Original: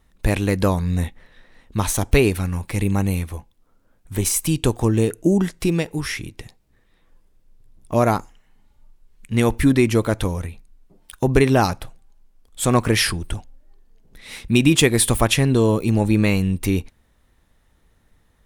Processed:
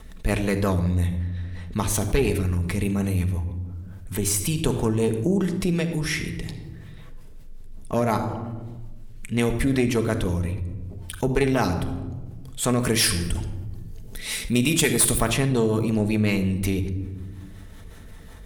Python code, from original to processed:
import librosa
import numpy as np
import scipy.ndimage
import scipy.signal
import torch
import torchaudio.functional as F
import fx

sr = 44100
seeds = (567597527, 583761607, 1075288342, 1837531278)

y = fx.peak_eq(x, sr, hz=230.0, db=-2.5, octaves=0.77)
y = fx.rotary(y, sr, hz=5.5)
y = fx.high_shelf(y, sr, hz=4900.0, db=11.0, at=(12.79, 15.18))
y = fx.room_shoebox(y, sr, seeds[0], volume_m3=3400.0, walls='furnished', distance_m=1.5)
y = fx.tube_stage(y, sr, drive_db=4.0, bias=0.6)
y = fx.env_flatten(y, sr, amount_pct=50)
y = y * 10.0 ** (-5.0 / 20.0)